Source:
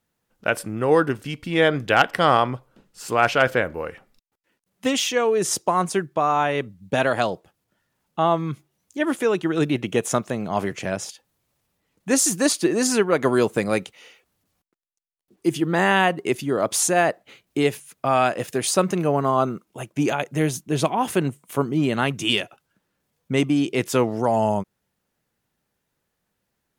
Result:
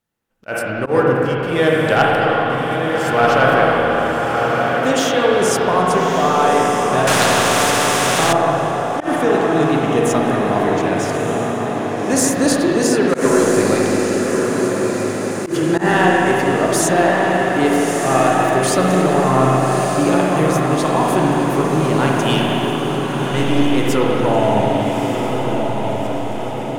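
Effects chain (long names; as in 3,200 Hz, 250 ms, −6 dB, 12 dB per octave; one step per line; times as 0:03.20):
0:22.34–0:23.64: gain on one half-wave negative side −7 dB
dynamic equaliser 2,600 Hz, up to −4 dB, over −36 dBFS, Q 1.9
on a send: feedback delay with all-pass diffusion 1,232 ms, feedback 58%, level −5 dB
0:02.07–0:02.50: on the sum: downward compressor, threshold −23 dBFS, peak gain reduction 11 dB
leveller curve on the samples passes 1
spring reverb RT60 3.9 s, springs 38/53/59 ms, chirp 50 ms, DRR −3.5 dB
volume swells 100 ms
0:07.07–0:08.33: every bin compressed towards the loudest bin 2 to 1
level −2.5 dB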